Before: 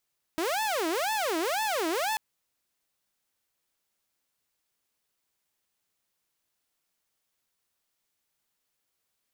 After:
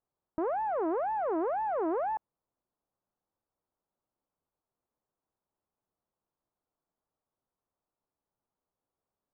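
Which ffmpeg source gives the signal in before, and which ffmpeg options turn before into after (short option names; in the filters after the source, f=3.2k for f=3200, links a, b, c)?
-f lavfi -i "aevalsrc='0.0631*(2*mod((600*t-283/(2*PI*2)*sin(2*PI*2*t)),1)-1)':d=1.79:s=44100"
-af "lowpass=f=1.1k:w=0.5412,lowpass=f=1.1k:w=1.3066"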